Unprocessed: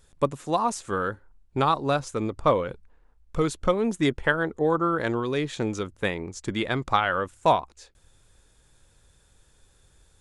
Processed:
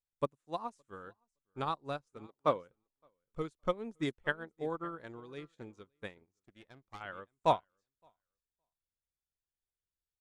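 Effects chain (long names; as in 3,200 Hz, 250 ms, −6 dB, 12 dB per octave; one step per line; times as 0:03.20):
0:02.26–0:02.68: high-pass filter 310 Hz → 84 Hz
repeating echo 566 ms, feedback 19%, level −15.5 dB
0:06.25–0:07.01: tube saturation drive 20 dB, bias 0.8
expander for the loud parts 2.5 to 1, over −39 dBFS
level −6 dB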